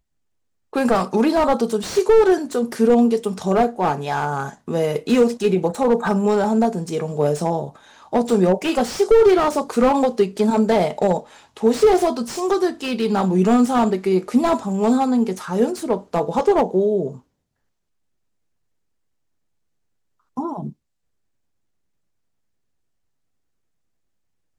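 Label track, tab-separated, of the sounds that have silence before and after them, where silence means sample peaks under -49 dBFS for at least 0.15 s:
0.730000	17.220000	sound
20.370000	20.730000	sound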